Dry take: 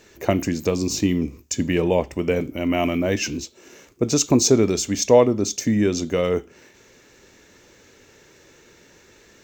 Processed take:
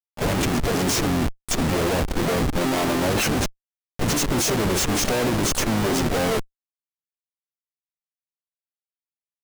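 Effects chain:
comparator with hysteresis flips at −30.5 dBFS
pitch-shifted copies added −12 semitones −11 dB, +3 semitones −11 dB, +7 semitones −7 dB

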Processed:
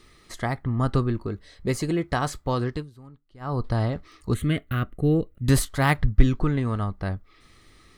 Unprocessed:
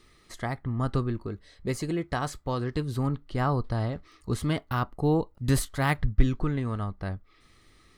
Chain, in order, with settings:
0:02.64–0:03.66: duck −23.5 dB, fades 0.26 s
0:04.34–0:05.48: phaser with its sweep stopped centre 2,200 Hz, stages 4
level +4.5 dB

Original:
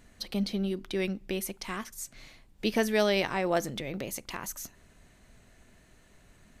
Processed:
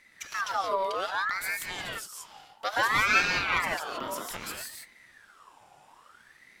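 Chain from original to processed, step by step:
reverb whose tail is shaped and stops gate 200 ms rising, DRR −1 dB
ring modulator whose carrier an LFO sweeps 1,400 Hz, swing 45%, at 0.61 Hz

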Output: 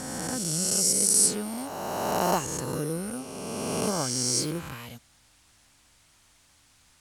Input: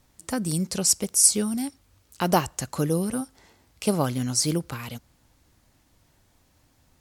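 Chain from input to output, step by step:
peak hold with a rise ahead of every peak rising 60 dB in 2.59 s
noise in a band 660–10,000 Hz −54 dBFS
level −8.5 dB

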